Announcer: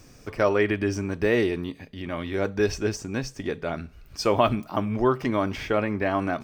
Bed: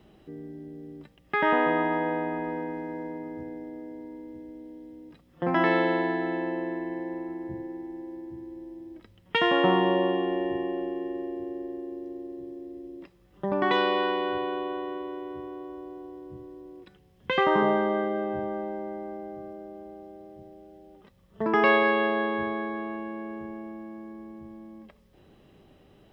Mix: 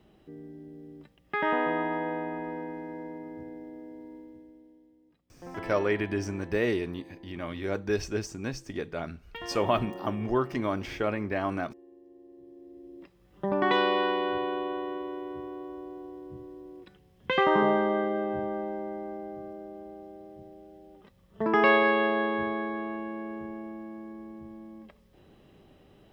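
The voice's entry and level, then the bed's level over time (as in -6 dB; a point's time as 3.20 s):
5.30 s, -5.0 dB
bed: 4.16 s -4 dB
4.99 s -17 dB
12.03 s -17 dB
13.29 s -0.5 dB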